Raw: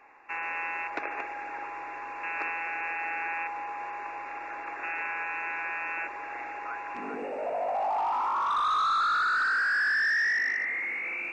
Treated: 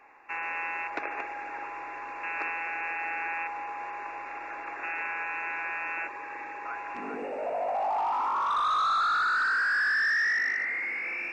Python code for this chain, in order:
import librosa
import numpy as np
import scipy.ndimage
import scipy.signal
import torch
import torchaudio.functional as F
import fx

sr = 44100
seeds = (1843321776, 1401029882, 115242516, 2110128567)

y = fx.notch_comb(x, sr, f0_hz=700.0, at=(6.08, 6.65))
y = y + 10.0 ** (-22.0 / 20.0) * np.pad(y, (int(1116 * sr / 1000.0), 0))[:len(y)]